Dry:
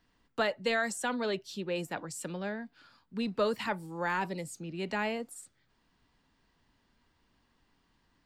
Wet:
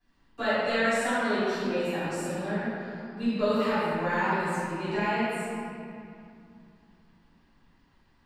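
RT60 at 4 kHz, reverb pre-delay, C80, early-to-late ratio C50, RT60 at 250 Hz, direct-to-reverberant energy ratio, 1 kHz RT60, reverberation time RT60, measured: 1.5 s, 3 ms, -3.5 dB, -6.0 dB, 3.7 s, -20.0 dB, 2.5 s, 2.5 s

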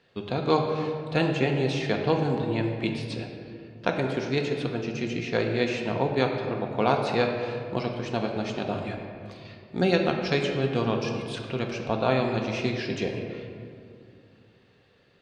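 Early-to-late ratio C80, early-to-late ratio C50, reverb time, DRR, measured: 5.0 dB, 4.0 dB, 2.4 s, 2.0 dB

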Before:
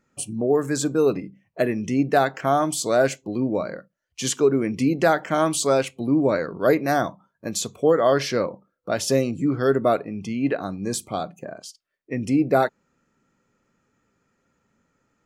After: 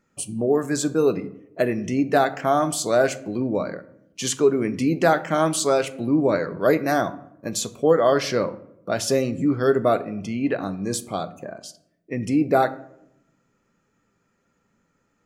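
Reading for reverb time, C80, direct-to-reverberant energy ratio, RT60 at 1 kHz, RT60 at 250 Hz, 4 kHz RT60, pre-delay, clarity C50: 0.80 s, 19.5 dB, 11.0 dB, 0.70 s, 1.1 s, 0.45 s, 5 ms, 17.0 dB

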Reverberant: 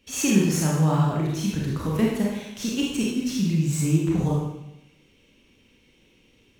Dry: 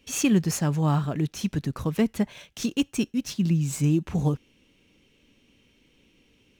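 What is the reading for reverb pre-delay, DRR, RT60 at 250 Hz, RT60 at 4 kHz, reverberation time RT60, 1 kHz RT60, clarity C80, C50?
26 ms, -4.5 dB, 0.85 s, 0.80 s, 0.85 s, 0.85 s, 3.5 dB, 0.0 dB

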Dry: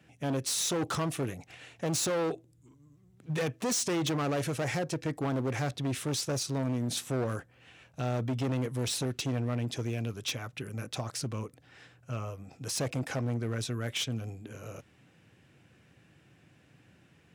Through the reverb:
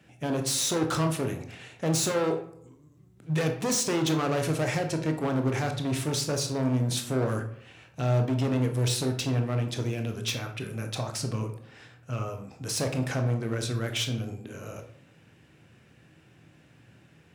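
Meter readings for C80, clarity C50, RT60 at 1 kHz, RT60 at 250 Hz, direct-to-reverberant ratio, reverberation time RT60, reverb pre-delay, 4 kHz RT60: 13.0 dB, 9.0 dB, 0.65 s, 0.85 s, 4.5 dB, 0.70 s, 17 ms, 0.40 s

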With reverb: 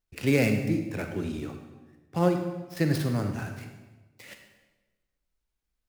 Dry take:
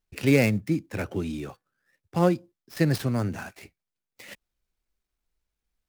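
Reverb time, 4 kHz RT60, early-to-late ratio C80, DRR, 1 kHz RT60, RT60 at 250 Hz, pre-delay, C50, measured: 1.2 s, 1.0 s, 8.5 dB, 5.0 dB, 1.1 s, 1.4 s, 34 ms, 6.0 dB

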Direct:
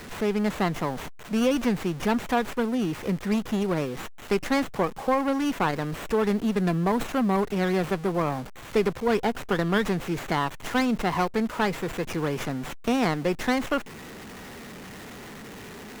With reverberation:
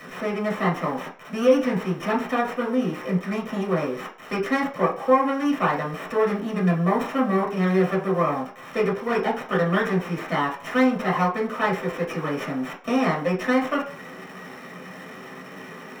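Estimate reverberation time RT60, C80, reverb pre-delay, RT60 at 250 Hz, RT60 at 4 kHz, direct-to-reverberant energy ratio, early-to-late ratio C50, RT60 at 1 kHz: 0.45 s, 14.5 dB, 3 ms, 0.40 s, 0.45 s, -3.5 dB, 9.5 dB, 0.45 s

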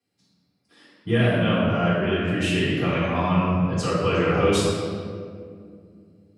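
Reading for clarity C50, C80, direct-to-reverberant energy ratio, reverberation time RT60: -2.0 dB, 0.0 dB, -12.5 dB, 2.2 s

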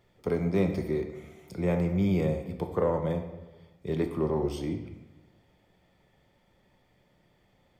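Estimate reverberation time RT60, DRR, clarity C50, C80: 1.1 s, 4.5 dB, 8.0 dB, 10.0 dB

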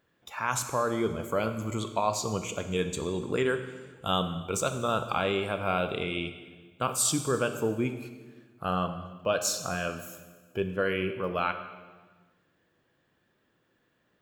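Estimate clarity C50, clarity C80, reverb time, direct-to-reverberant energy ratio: 10.0 dB, 11.5 dB, 1.4 s, 8.0 dB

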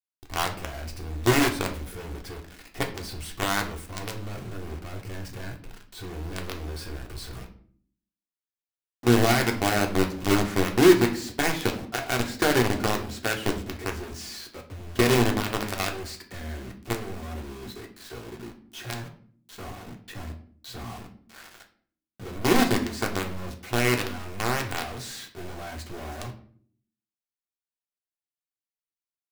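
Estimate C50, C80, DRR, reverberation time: 11.0 dB, 15.5 dB, 2.0 dB, 0.55 s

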